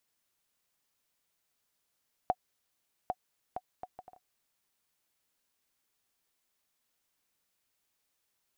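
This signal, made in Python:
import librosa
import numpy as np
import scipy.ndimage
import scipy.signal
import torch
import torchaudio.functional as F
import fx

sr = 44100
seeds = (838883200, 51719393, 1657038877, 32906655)

y = fx.bouncing_ball(sr, first_gap_s=0.8, ratio=0.58, hz=737.0, decay_ms=50.0, level_db=-16.0)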